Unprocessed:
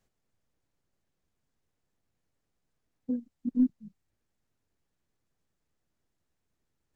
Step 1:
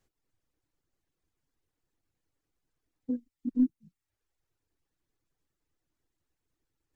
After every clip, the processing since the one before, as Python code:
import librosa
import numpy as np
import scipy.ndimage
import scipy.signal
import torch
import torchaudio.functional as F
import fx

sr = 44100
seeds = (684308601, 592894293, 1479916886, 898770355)

y = fx.dereverb_blind(x, sr, rt60_s=0.77)
y = fx.graphic_eq_31(y, sr, hz=(200, 315, 630), db=(-7, 5, -4))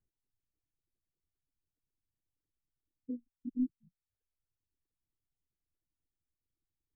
y = fx.envelope_sharpen(x, sr, power=2.0)
y = y * librosa.db_to_amplitude(-7.5)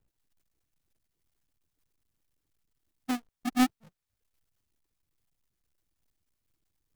y = fx.halfwave_hold(x, sr)
y = y * librosa.db_to_amplitude(5.5)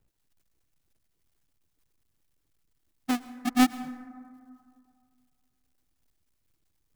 y = fx.rev_plate(x, sr, seeds[0], rt60_s=2.2, hf_ratio=0.3, predelay_ms=95, drr_db=15.0)
y = y * librosa.db_to_amplitude(3.5)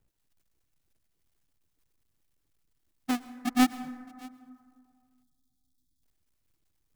y = fx.spec_erase(x, sr, start_s=5.23, length_s=0.8, low_hz=340.0, high_hz=3200.0)
y = y + 10.0 ** (-23.5 / 20.0) * np.pad(y, (int(620 * sr / 1000.0), 0))[:len(y)]
y = y * librosa.db_to_amplitude(-1.5)